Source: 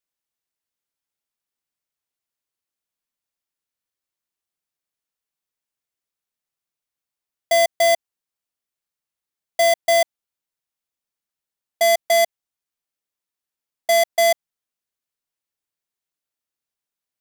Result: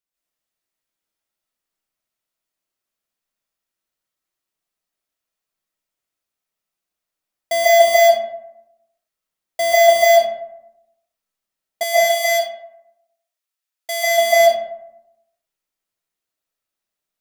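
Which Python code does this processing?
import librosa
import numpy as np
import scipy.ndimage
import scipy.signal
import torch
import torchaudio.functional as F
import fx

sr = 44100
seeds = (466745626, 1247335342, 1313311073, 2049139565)

y = fx.highpass(x, sr, hz=1500.0, slope=6, at=(11.83, 14.1))
y = fx.rev_freeverb(y, sr, rt60_s=0.89, hf_ratio=0.45, predelay_ms=105, drr_db=-7.5)
y = y * librosa.db_to_amplitude(-3.0)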